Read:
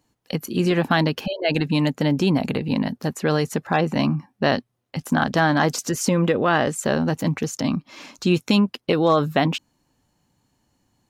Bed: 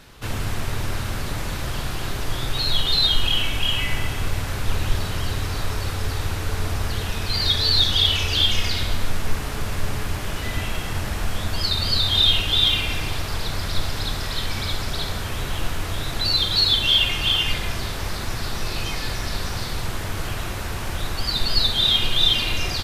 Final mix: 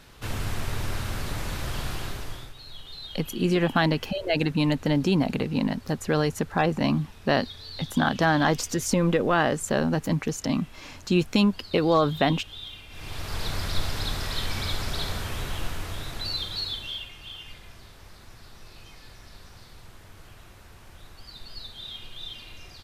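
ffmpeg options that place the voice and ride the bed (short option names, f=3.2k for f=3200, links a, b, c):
-filter_complex "[0:a]adelay=2850,volume=-3dB[a];[1:a]volume=14.5dB,afade=t=out:st=1.92:d=0.62:silence=0.125893,afade=t=in:st=12.9:d=0.56:silence=0.11885,afade=t=out:st=15.11:d=1.98:silence=0.133352[b];[a][b]amix=inputs=2:normalize=0"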